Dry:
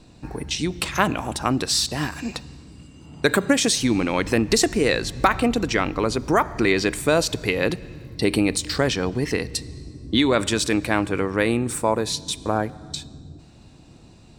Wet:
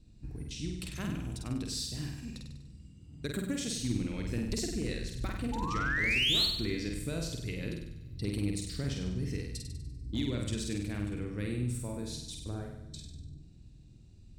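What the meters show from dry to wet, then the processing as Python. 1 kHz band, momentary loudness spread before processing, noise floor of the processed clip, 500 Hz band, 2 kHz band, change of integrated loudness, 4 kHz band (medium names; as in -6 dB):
-19.0 dB, 12 LU, -54 dBFS, -19.0 dB, -11.5 dB, -12.0 dB, -8.0 dB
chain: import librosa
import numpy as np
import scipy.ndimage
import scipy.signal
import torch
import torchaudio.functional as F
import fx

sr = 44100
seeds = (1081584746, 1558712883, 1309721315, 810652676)

y = fx.spec_paint(x, sr, seeds[0], shape='rise', start_s=5.52, length_s=0.94, low_hz=840.0, high_hz=4500.0, level_db=-10.0)
y = fx.tone_stack(y, sr, knobs='10-0-1')
y = fx.clip_asym(y, sr, top_db=-31.0, bottom_db=-28.0)
y = fx.room_flutter(y, sr, wall_m=8.4, rt60_s=0.78)
y = y * 10.0 ** (3.5 / 20.0)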